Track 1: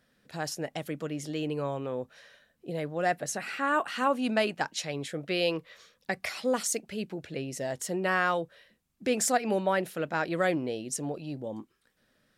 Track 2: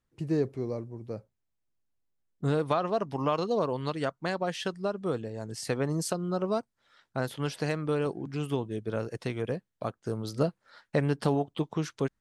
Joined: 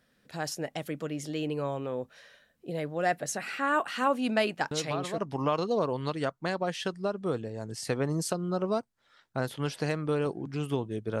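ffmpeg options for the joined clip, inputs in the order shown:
-filter_complex "[1:a]asplit=2[s0][s1];[0:a]apad=whole_dur=11.2,atrim=end=11.2,atrim=end=5.182[s2];[s1]atrim=start=2.978:end=9[s3];[s0]atrim=start=2.51:end=2.98,asetpts=PTS-STARTPTS,volume=0.447,afade=t=in:d=0.004:c=hsin,afade=t=out:st=0.466:d=0.004:c=hsin,adelay=4710[s4];[s2][s3]acrossfade=d=0.004:c1=hsin:c2=hsin[s5];[s5][s4]amix=inputs=2:normalize=0"

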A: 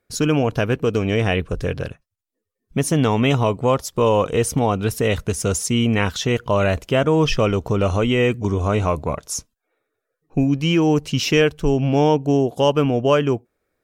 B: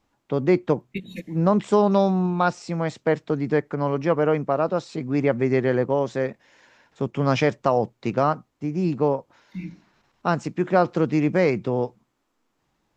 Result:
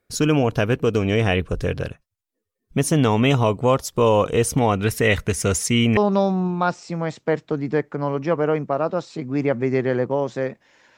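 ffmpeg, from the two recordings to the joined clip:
-filter_complex "[0:a]asettb=1/sr,asplit=3[s0][s1][s2];[s0]atrim=end=4.584[s3];[s1]atrim=start=4.58:end=5.97,asetpts=PTS-STARTPTS,afade=t=in:d=0.004:c=qsin,afade=t=out:st=1.386:d=0.004:c=qsin,equalizer=f=2000:w=2.2:g=8.5[s4];[s2]atrim=start=5.966[s5];[s3][s4]acrossfade=d=0.004:c1=hsin:c2=qsin[s6];[s6][s5]acrossfade=d=0.004:c1=qsin:c2=hsin,apad=whole_dur=10.97,atrim=end=10.97,atrim=end=5.972[s7];[1:a]atrim=start=1.758:end=6.76[s8];[s7][s8]acrossfade=d=0.004:c1=hsin:c2=hsin"

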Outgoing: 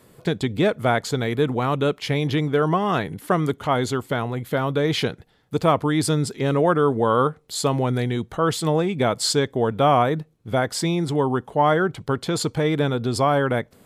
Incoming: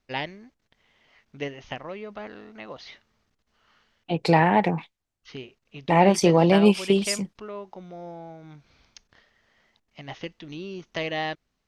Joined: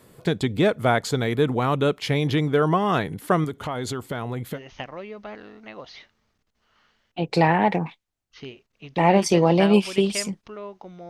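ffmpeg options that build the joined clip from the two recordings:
-filter_complex "[0:a]asettb=1/sr,asplit=3[s0][s1][s2];[s0]atrim=end=3.444[s3];[s1]atrim=start=3.44:end=4.59,asetpts=PTS-STARTPTS,afade=t=in:d=0.004:c=qsin,afade=t=out:st=1.146:d=0.004:c=qsin,acompressor=threshold=0.0562:ratio=5:attack=3.2:release=140:knee=1:detection=peak[s4];[s2]atrim=start=4.586[s5];[s3][s4]acrossfade=d=0.004:c1=hsin:c2=qsin[s6];[s6][s5]acrossfade=d=0.004:c1=qsin:c2=hsin,apad=whole_dur=11.09,atrim=end=11.09,atrim=end=4.59,asetpts=PTS-STARTPTS[s7];[1:a]atrim=start=1.45:end=8.01,asetpts=PTS-STARTPTS[s8];[s7][s8]acrossfade=d=0.06:c1=tri:c2=tri"

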